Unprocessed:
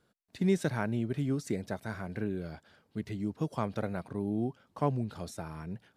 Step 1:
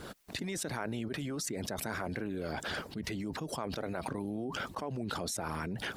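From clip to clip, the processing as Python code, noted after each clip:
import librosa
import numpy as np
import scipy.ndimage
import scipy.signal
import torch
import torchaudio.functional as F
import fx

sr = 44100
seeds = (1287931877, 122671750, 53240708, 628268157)

y = fx.hpss(x, sr, part='harmonic', gain_db=-16)
y = fx.env_flatten(y, sr, amount_pct=100)
y = y * librosa.db_to_amplitude(-9.0)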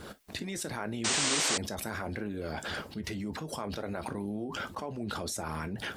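y = fx.rev_gated(x, sr, seeds[0], gate_ms=80, shape='falling', drr_db=9.0)
y = fx.spec_paint(y, sr, seeds[1], shape='noise', start_s=1.04, length_s=0.54, low_hz=230.0, high_hz=9000.0, level_db=-29.0)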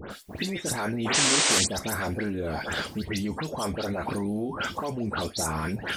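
y = fx.dispersion(x, sr, late='highs', ms=110.0, hz=2500.0)
y = y * librosa.db_to_amplitude(6.5)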